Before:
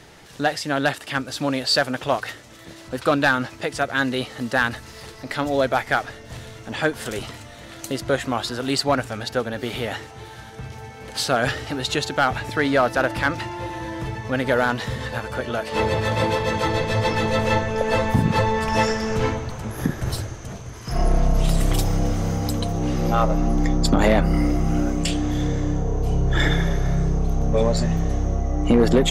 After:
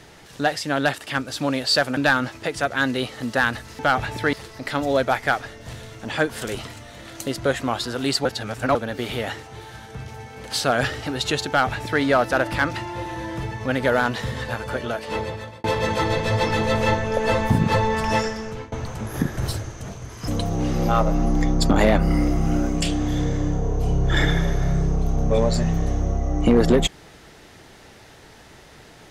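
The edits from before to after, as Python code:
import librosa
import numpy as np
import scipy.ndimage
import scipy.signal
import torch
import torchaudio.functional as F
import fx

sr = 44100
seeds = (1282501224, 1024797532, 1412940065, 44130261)

y = fx.edit(x, sr, fx.cut(start_s=1.97, length_s=1.18),
    fx.reverse_span(start_s=8.89, length_s=0.5),
    fx.duplicate(start_s=12.12, length_s=0.54, to_s=4.97),
    fx.fade_out_span(start_s=15.43, length_s=0.85),
    fx.fade_out_to(start_s=18.67, length_s=0.69, floor_db=-22.5),
    fx.cut(start_s=20.92, length_s=1.59), tone=tone)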